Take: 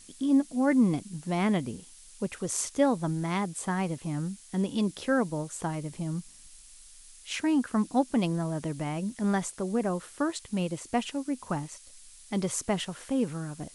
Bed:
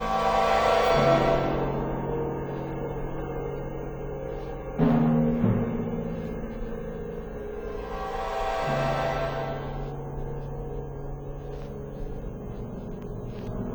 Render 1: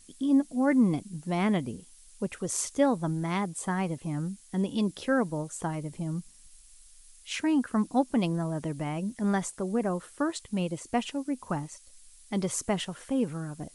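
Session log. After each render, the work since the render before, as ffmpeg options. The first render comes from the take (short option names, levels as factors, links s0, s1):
-af "afftdn=nr=6:nf=-52"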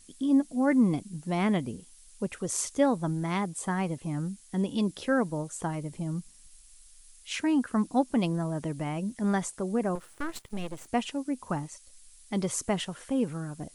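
-filter_complex "[0:a]asettb=1/sr,asplit=3[s0][s1][s2];[s0]atrim=end=9.954[s3];[s1]atrim=start=9.95:end=10.88,asetpts=PTS-STARTPTS,afade=t=in:d=0.004:c=qsin,afade=t=out:st=0.926:d=0.004:c=qsin,aeval=exprs='max(val(0),0)':c=same[s4];[s2]atrim=start=10.876[s5];[s3][s4]acrossfade=d=0.004:c1=hsin:c2=qsin[s6];[s6][s5]acrossfade=d=0.004:c1=qsin:c2=hsin"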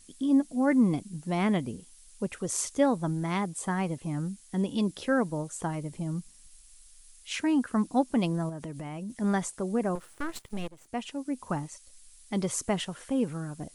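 -filter_complex "[0:a]asettb=1/sr,asplit=3[s0][s1][s2];[s0]atrim=end=8.494[s3];[s1]atrim=start=8.49:end=9.1,asetpts=PTS-STARTPTS,afade=t=in:d=0.004:c=qsin,afade=t=out:st=0.606:d=0.004:c=qsin,acompressor=threshold=0.02:ratio=6:attack=3.2:release=140:knee=1:detection=peak[s4];[s2]atrim=start=9.096[s5];[s3][s4]acrossfade=d=0.004:c1=hsin:c2=qsin[s6];[s6][s5]acrossfade=d=0.004:c1=qsin:c2=hsin,asplit=2[s7][s8];[s7]atrim=end=10.68,asetpts=PTS-STARTPTS,afade=t=out:st=10.676:d=0.004:c=hsin:silence=0.177828[s9];[s8]atrim=start=10.68,asetpts=PTS-STARTPTS,afade=t=in:d=0.73:silence=0.177828[s10];[s9][s10]concat=n=2:v=0:a=1"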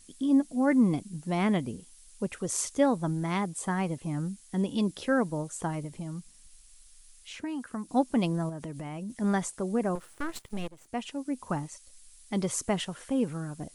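-filter_complex "[0:a]asettb=1/sr,asplit=3[s0][s1][s2];[s0]atrim=end=5.844[s3];[s1]atrim=start=5.84:end=7.89,asetpts=PTS-STARTPTS,afade=t=in:d=0.004:c=qsin,afade=t=out:st=2.046:d=0.004:c=qsin,acrossover=split=790|6000[s4][s5][s6];[s4]acompressor=threshold=0.0178:ratio=4[s7];[s5]acompressor=threshold=0.00562:ratio=4[s8];[s6]acompressor=threshold=0.00158:ratio=4[s9];[s7][s8][s9]amix=inputs=3:normalize=0[s10];[s2]atrim=start=7.886[s11];[s3][s10]acrossfade=d=0.004:c1=hsin:c2=qsin[s12];[s12][s11]acrossfade=d=0.004:c1=qsin:c2=hsin"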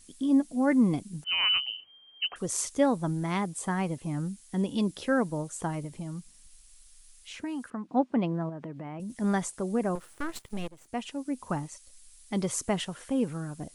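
-filter_complex "[0:a]asettb=1/sr,asplit=3[s0][s1][s2];[s0]atrim=end=1.244[s3];[s1]atrim=start=1.24:end=2.36,asetpts=PTS-STARTPTS,afade=t=in:d=0.004:c=qsin,afade=t=out:st=1.116:d=0.004:c=qsin,lowpass=f=2700:t=q:w=0.5098,lowpass=f=2700:t=q:w=0.6013,lowpass=f=2700:t=q:w=0.9,lowpass=f=2700:t=q:w=2.563,afreqshift=-3200[s4];[s2]atrim=start=2.356[s5];[s3][s4]acrossfade=d=0.004:c1=hsin:c2=qsin[s6];[s6][s5]acrossfade=d=0.004:c1=qsin:c2=hsin,asettb=1/sr,asplit=3[s7][s8][s9];[s7]atrim=end=7.704[s10];[s8]atrim=start=7.7:end=9,asetpts=PTS-STARTPTS,afade=t=in:d=0.004:c=qsin,afade=t=out:st=1.296:d=0.004:c=qsin,highpass=140,lowpass=2100[s11];[s9]atrim=start=8.996[s12];[s10][s11]acrossfade=d=0.004:c1=hsin:c2=qsin[s13];[s13][s12]acrossfade=d=0.004:c1=qsin:c2=hsin"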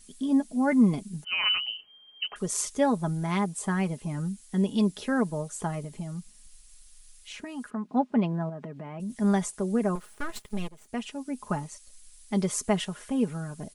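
-af "aecho=1:1:4.8:0.56"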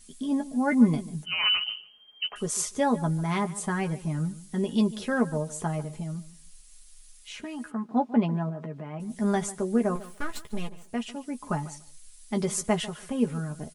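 -filter_complex "[0:a]asplit=2[s0][s1];[s1]adelay=13,volume=0.447[s2];[s0][s2]amix=inputs=2:normalize=0,asplit=2[s3][s4];[s4]adelay=146,lowpass=f=3400:p=1,volume=0.141,asplit=2[s5][s6];[s6]adelay=146,lowpass=f=3400:p=1,volume=0.16[s7];[s3][s5][s7]amix=inputs=3:normalize=0"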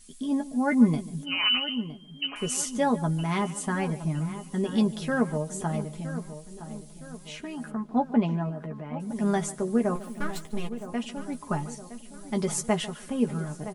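-filter_complex "[0:a]asplit=2[s0][s1];[s1]adelay=965,lowpass=f=2200:p=1,volume=0.237,asplit=2[s2][s3];[s3]adelay=965,lowpass=f=2200:p=1,volume=0.51,asplit=2[s4][s5];[s5]adelay=965,lowpass=f=2200:p=1,volume=0.51,asplit=2[s6][s7];[s7]adelay=965,lowpass=f=2200:p=1,volume=0.51,asplit=2[s8][s9];[s9]adelay=965,lowpass=f=2200:p=1,volume=0.51[s10];[s0][s2][s4][s6][s8][s10]amix=inputs=6:normalize=0"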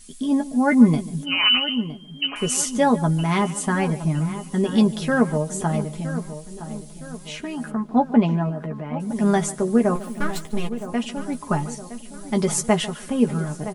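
-af "volume=2.11,alimiter=limit=0.708:level=0:latency=1"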